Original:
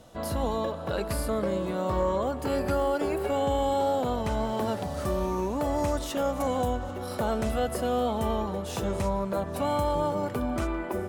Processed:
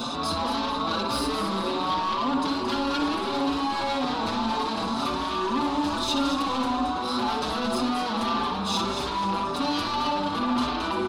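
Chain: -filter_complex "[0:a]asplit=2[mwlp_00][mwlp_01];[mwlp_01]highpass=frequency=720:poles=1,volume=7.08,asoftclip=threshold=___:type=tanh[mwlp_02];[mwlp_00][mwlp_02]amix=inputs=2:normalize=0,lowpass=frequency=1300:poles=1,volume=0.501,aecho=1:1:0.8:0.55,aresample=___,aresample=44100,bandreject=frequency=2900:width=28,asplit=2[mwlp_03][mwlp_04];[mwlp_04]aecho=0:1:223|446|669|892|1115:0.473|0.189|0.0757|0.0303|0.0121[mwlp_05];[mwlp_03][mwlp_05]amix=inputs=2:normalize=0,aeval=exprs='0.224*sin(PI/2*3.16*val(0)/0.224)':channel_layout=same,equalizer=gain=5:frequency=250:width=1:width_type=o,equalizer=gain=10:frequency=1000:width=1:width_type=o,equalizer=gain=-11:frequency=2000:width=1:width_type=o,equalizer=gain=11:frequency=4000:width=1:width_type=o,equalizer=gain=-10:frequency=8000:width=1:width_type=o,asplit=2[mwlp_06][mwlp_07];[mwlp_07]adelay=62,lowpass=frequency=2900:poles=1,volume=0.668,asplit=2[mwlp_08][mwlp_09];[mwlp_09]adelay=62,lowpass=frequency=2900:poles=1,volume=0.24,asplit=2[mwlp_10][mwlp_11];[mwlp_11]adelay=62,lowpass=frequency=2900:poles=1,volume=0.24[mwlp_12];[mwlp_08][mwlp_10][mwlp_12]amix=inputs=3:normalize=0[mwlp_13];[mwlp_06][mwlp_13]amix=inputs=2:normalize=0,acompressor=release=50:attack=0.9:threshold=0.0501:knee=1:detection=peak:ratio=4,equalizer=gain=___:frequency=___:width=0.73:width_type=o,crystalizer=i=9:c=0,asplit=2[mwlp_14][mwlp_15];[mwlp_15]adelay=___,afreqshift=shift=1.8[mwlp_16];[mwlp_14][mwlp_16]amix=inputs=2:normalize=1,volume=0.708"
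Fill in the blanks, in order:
0.133, 22050, 8.5, 260, 5.4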